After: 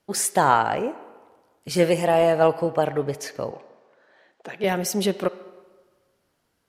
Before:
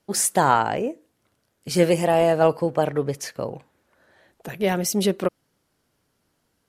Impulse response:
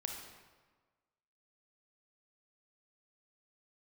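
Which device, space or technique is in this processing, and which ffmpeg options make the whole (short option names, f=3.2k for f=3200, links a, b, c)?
filtered reverb send: -filter_complex "[0:a]asettb=1/sr,asplit=3[a][b][c];[a]atrim=end=3.514[d];[b]atrim=start=3.51:end=4.64,asetpts=PTS-STARTPTS,afade=t=in:d=0.004:c=qsin,afade=t=out:st=1.126:d=0.004:c=qsin,acrossover=split=200 7600:gain=0.0708 1 0.0708[e][f][g];[e][f][g]amix=inputs=3:normalize=0[h];[c]atrim=start=4.636[i];[d][h]acrossfade=d=0.004:c1=hsin:c2=qsin[j];[j][i]acrossfade=d=0.004:c1=qsin:c2=hsin,asplit=2[k][l];[l]highpass=350,lowpass=4.9k[m];[1:a]atrim=start_sample=2205[n];[m][n]afir=irnorm=-1:irlink=0,volume=-7.5dB[o];[k][o]amix=inputs=2:normalize=0,volume=-2dB"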